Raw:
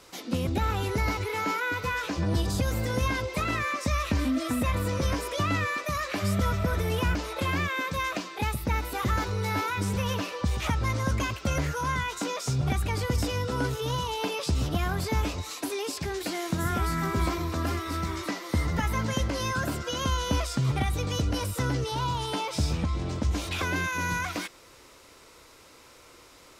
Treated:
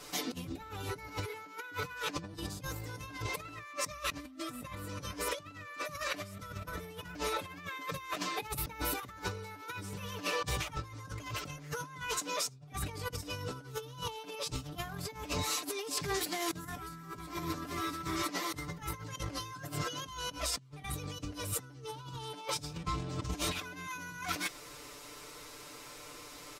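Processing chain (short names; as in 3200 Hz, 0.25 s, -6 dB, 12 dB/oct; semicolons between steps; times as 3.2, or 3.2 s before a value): high shelf 6500 Hz +4.5 dB; comb 6.8 ms, depth 97%; negative-ratio compressor -32 dBFS, ratio -0.5; gain -6.5 dB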